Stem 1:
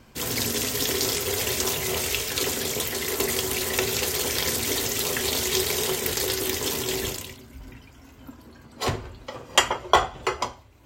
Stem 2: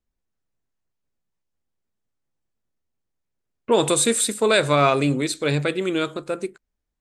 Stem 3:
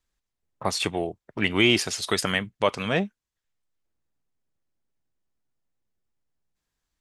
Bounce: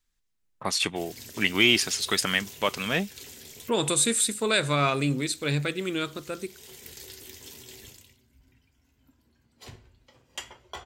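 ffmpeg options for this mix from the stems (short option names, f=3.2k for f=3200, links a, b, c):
-filter_complex "[0:a]equalizer=f=1.2k:w=3.9:g=-6,flanger=delay=9.2:depth=7.8:regen=-70:speed=0.28:shape=sinusoidal,adelay=800,volume=-12.5dB[a];[1:a]volume=-2dB,asplit=2[b][c];[2:a]equalizer=f=75:w=0.8:g=-12,volume=2.5dB[d];[c]apad=whole_len=514030[e];[a][e]sidechaincompress=threshold=-32dB:ratio=10:attack=9.3:release=488[f];[f][b][d]amix=inputs=3:normalize=0,equalizer=f=600:t=o:w=2.2:g=-7.5"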